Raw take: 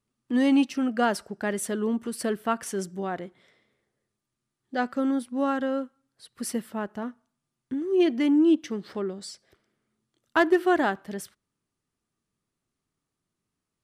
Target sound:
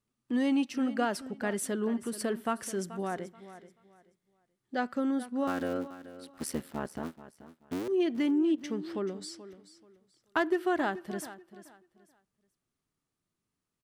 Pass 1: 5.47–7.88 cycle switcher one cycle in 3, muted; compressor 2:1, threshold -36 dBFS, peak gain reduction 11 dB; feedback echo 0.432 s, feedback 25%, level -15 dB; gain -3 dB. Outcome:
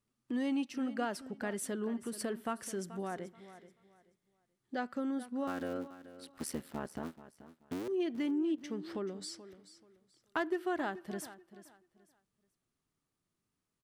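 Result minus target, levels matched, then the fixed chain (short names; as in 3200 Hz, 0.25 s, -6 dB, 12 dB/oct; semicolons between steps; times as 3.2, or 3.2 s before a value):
compressor: peak gain reduction +6 dB
5.47–7.88 cycle switcher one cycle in 3, muted; compressor 2:1, threshold -24 dBFS, peak gain reduction 5 dB; feedback echo 0.432 s, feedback 25%, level -15 dB; gain -3 dB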